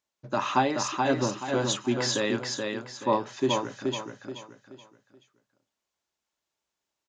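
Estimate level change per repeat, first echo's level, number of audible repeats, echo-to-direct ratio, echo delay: −9.5 dB, −4.0 dB, 4, −3.5 dB, 428 ms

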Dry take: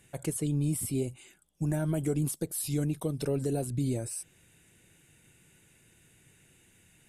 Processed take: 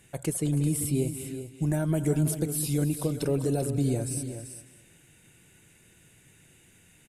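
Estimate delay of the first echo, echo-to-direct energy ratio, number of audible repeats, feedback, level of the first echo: 208 ms, −8.0 dB, 5, repeats not evenly spaced, −15.0 dB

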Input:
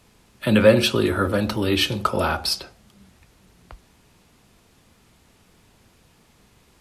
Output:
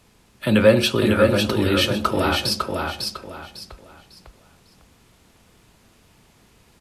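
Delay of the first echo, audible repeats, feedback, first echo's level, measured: 551 ms, 3, 29%, −4.0 dB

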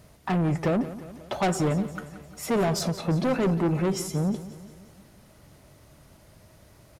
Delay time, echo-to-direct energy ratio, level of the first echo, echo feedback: 177 ms, −13.5 dB, −15.0 dB, 56%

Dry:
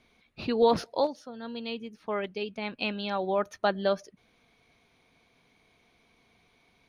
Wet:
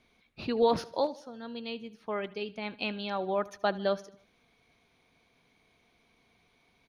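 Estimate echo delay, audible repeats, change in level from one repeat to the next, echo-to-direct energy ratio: 76 ms, 3, −6.5 dB, −19.0 dB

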